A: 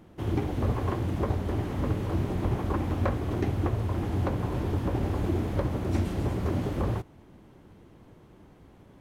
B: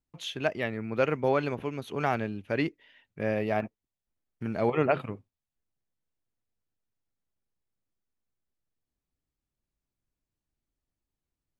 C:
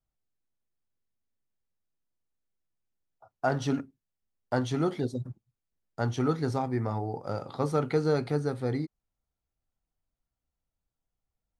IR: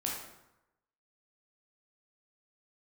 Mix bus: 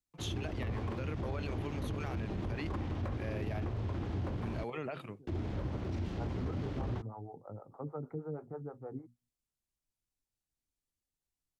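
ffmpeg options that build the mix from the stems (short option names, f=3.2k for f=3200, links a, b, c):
-filter_complex "[0:a]lowpass=f=5.7k:w=0.5412,lowpass=f=5.7k:w=1.3066,equalizer=f=740:w=0.42:g=-3,aeval=exprs='sgn(val(0))*max(abs(val(0))-0.00708,0)':c=same,volume=-4dB,asplit=3[a][b][c];[a]atrim=end=4.64,asetpts=PTS-STARTPTS,afade=t=out:st=4.636:d=0.004:c=hsin[d];[b]atrim=start=4.64:end=5.27,asetpts=PTS-STARTPTS,volume=0[e];[c]atrim=start=5.27,asetpts=PTS-STARTPTS,afade=t=in:d=0.004:c=hsin[f];[d][e][f]concat=n=3:v=0:a=1[g];[1:a]equalizer=f=8.5k:t=o:w=2.6:g=10.5,alimiter=limit=-19.5dB:level=0:latency=1:release=49,volume=-9dB,asplit=2[h][i];[2:a]lowpass=f=1.2k:w=0.5412,lowpass=f=1.2k:w=1.3066,bandreject=f=60:t=h:w=6,bandreject=f=120:t=h:w=6,bandreject=f=180:t=h:w=6,bandreject=f=240:t=h:w=6,acrossover=split=410[j][k];[j]aeval=exprs='val(0)*(1-1/2+1/2*cos(2*PI*6.4*n/s))':c=same[l];[k]aeval=exprs='val(0)*(1-1/2-1/2*cos(2*PI*6.4*n/s))':c=same[m];[l][m]amix=inputs=2:normalize=0,adelay=200,volume=-8.5dB[n];[i]apad=whole_len=520345[o];[n][o]sidechaincompress=threshold=-57dB:ratio=8:attack=6.8:release=448[p];[g][h][p]amix=inputs=3:normalize=0,acrossover=split=160[q][r];[r]acompressor=threshold=-34dB:ratio=6[s];[q][s]amix=inputs=2:normalize=0,alimiter=level_in=5dB:limit=-24dB:level=0:latency=1:release=18,volume=-5dB"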